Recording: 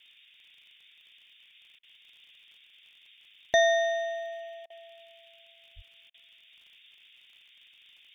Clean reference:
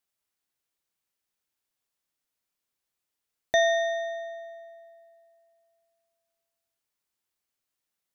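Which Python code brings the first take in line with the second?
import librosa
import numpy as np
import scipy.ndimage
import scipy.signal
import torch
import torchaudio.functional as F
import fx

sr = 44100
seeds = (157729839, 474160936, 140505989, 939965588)

y = fx.fix_declick_ar(x, sr, threshold=6.5)
y = fx.highpass(y, sr, hz=140.0, slope=24, at=(5.75, 5.87), fade=0.02)
y = fx.fix_interpolate(y, sr, at_s=(1.79, 4.66, 6.1), length_ms=40.0)
y = fx.noise_reduce(y, sr, print_start_s=0.11, print_end_s=0.61, reduce_db=26.0)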